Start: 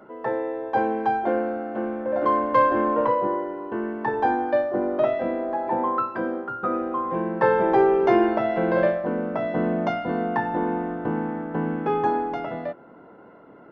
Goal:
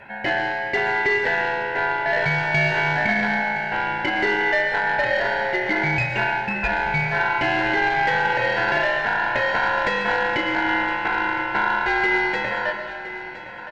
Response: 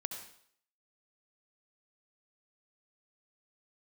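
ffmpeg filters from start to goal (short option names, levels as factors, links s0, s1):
-filter_complex "[0:a]bandreject=f=56.75:t=h:w=4,bandreject=f=113.5:t=h:w=4,bandreject=f=170.25:t=h:w=4,bandreject=f=227:t=h:w=4,bandreject=f=283.75:t=h:w=4,bandreject=f=340.5:t=h:w=4,bandreject=f=397.25:t=h:w=4,bandreject=f=454:t=h:w=4,bandreject=f=510.75:t=h:w=4,bandreject=f=567.5:t=h:w=4,bandreject=f=624.25:t=h:w=4,bandreject=f=681:t=h:w=4,bandreject=f=737.75:t=h:w=4,bandreject=f=794.5:t=h:w=4,bandreject=f=851.25:t=h:w=4,bandreject=f=908:t=h:w=4,bandreject=f=964.75:t=h:w=4,bandreject=f=1021.5:t=h:w=4,bandreject=f=1078.25:t=h:w=4,bandreject=f=1135:t=h:w=4,bandreject=f=1191.75:t=h:w=4,bandreject=f=1248.5:t=h:w=4,bandreject=f=1305.25:t=h:w=4,bandreject=f=1362:t=h:w=4,bandreject=f=1418.75:t=h:w=4,bandreject=f=1475.5:t=h:w=4,bandreject=f=1532.25:t=h:w=4,bandreject=f=1589:t=h:w=4,bandreject=f=1645.75:t=h:w=4,bandreject=f=1702.5:t=h:w=4,bandreject=f=1759.25:t=h:w=4,bandreject=f=1816:t=h:w=4,bandreject=f=1872.75:t=h:w=4,bandreject=f=1929.5:t=h:w=4,bandreject=f=1986.25:t=h:w=4,bandreject=f=2043:t=h:w=4,bandreject=f=2099.75:t=h:w=4,bandreject=f=2156.5:t=h:w=4,bandreject=f=2213.25:t=h:w=4,bandreject=f=2270:t=h:w=4,alimiter=limit=0.133:level=0:latency=1:release=133,aeval=exprs='val(0)*sin(2*PI*1200*n/s)':c=same,aeval=exprs='(tanh(10*val(0)+0.1)-tanh(0.1))/10':c=same,aecho=1:1:1015|2030|3045|4060:0.2|0.0818|0.0335|0.0138,asplit=2[s0][s1];[1:a]atrim=start_sample=2205,asetrate=25137,aresample=44100,highshelf=f=3800:g=12[s2];[s1][s2]afir=irnorm=-1:irlink=0,volume=0.841[s3];[s0][s3]amix=inputs=2:normalize=0,volume=1.26"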